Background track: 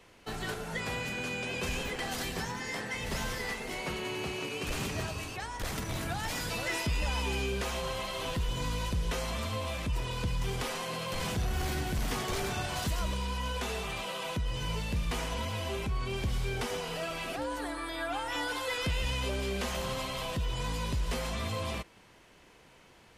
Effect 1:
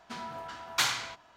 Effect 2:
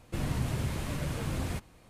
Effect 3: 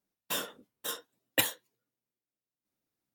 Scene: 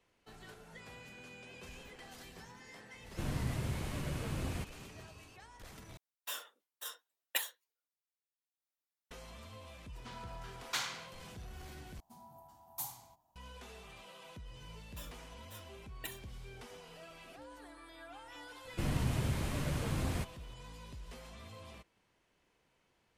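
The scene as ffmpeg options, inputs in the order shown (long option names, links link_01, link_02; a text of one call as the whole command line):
ffmpeg -i bed.wav -i cue0.wav -i cue1.wav -i cue2.wav -filter_complex "[2:a]asplit=2[link_01][link_02];[3:a]asplit=2[link_03][link_04];[1:a]asplit=2[link_05][link_06];[0:a]volume=-17dB[link_07];[link_03]highpass=790[link_08];[link_06]firequalizer=gain_entry='entry(130,0);entry(460,-15);entry(830,1);entry(1400,-26);entry(12000,14)':delay=0.05:min_phase=1[link_09];[link_04]asplit=2[link_10][link_11];[link_11]adelay=2.1,afreqshift=-1.6[link_12];[link_10][link_12]amix=inputs=2:normalize=1[link_13];[link_07]asplit=3[link_14][link_15][link_16];[link_14]atrim=end=5.974[link_17];[link_08]atrim=end=3.14,asetpts=PTS-STARTPTS,volume=-7.5dB[link_18];[link_15]atrim=start=9.106:end=12.004[link_19];[link_09]atrim=end=1.36,asetpts=PTS-STARTPTS,volume=-10dB[link_20];[link_16]atrim=start=13.356[link_21];[link_01]atrim=end=1.89,asetpts=PTS-STARTPTS,volume=-5dB,afade=type=in:duration=0.004:curve=hsin,afade=type=out:start_time=1.886:duration=0.004:curve=hsin,adelay=134505S[link_22];[link_05]atrim=end=1.36,asetpts=PTS-STARTPTS,volume=-9.5dB,afade=type=in:duration=0.004:curve=hsin,afade=type=out:start_time=1.356:duration=0.004:curve=hsin,adelay=9950[link_23];[link_13]atrim=end=3.14,asetpts=PTS-STARTPTS,volume=-14.5dB,afade=type=in:duration=0.004:curve=hsin,afade=type=out:start_time=3.136:duration=0.004:curve=hsin,adelay=14660[link_24];[link_02]atrim=end=1.89,asetpts=PTS-STARTPTS,volume=-2dB,afade=type=in:duration=0.004:curve=hsin,afade=type=out:start_time=1.886:duration=0.004:curve=hsin,adelay=18650[link_25];[link_17][link_18]acrossfade=duration=0.004:curve1=hsin:curve2=hsin[link_26];[link_26][link_19]acrossfade=duration=0.004:curve1=hsin:curve2=hsin[link_27];[link_27][link_20]acrossfade=duration=0.004:curve1=hsin:curve2=hsin[link_28];[link_28][link_21]acrossfade=duration=0.004:curve1=hsin:curve2=hsin[link_29];[link_29][link_22][link_23][link_24][link_25]amix=inputs=5:normalize=0" out.wav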